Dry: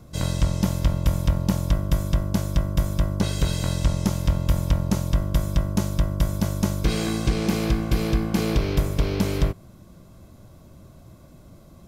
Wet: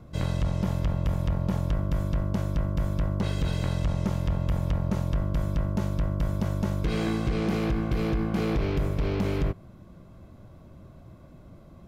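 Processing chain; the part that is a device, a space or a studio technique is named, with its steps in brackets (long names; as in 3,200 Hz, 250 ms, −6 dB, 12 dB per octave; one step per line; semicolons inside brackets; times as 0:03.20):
bass and treble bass 0 dB, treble −13 dB
limiter into clipper (brickwall limiter −15 dBFS, peak gain reduction 5 dB; hard clipping −19 dBFS, distortion −17 dB)
level −1 dB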